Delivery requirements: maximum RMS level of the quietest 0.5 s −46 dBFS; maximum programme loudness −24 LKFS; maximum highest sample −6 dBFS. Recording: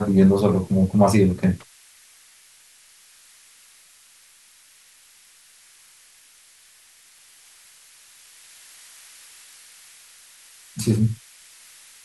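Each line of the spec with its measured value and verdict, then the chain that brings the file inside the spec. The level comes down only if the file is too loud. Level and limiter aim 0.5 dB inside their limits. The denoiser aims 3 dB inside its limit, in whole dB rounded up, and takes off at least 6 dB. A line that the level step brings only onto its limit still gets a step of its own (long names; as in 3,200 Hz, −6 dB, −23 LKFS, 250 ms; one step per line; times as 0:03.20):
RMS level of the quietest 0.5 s −53 dBFS: in spec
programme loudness −19.5 LKFS: out of spec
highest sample −3.0 dBFS: out of spec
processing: level −5 dB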